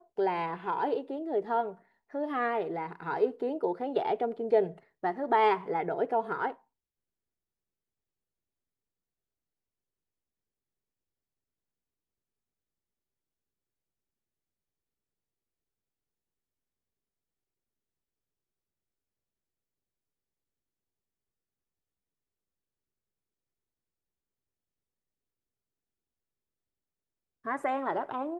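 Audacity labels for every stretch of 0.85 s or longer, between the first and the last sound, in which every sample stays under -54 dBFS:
6.580000	27.440000	silence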